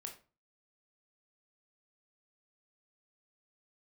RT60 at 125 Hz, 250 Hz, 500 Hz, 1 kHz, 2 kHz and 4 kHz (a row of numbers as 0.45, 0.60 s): 0.45, 0.40, 0.35, 0.35, 0.30, 0.25 s